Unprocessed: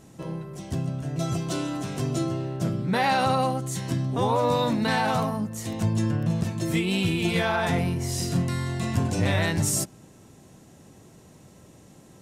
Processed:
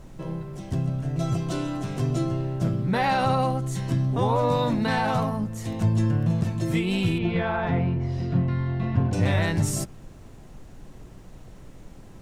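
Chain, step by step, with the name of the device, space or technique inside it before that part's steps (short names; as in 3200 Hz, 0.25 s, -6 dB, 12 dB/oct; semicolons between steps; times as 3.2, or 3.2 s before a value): car interior (bell 120 Hz +4.5 dB 0.58 oct; high shelf 4000 Hz -7 dB; brown noise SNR 19 dB); 7.18–9.13 air absorption 320 m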